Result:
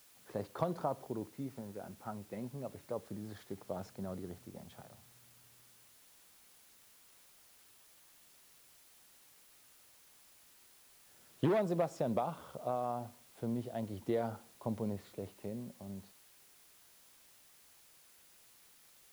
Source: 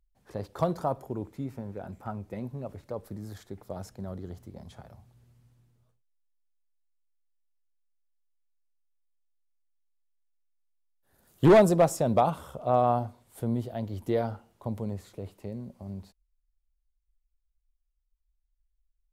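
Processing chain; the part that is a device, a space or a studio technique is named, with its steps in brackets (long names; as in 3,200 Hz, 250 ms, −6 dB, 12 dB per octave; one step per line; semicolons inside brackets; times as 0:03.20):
medium wave at night (band-pass filter 140–4,300 Hz; downward compressor, threshold −26 dBFS, peak gain reduction 12 dB; amplitude tremolo 0.27 Hz, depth 38%; steady tone 10,000 Hz −70 dBFS; white noise bed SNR 21 dB)
level −2 dB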